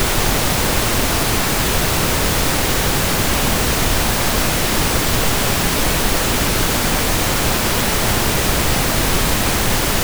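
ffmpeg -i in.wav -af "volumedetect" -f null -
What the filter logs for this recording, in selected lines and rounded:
mean_volume: -16.4 dB
max_volume: -2.4 dB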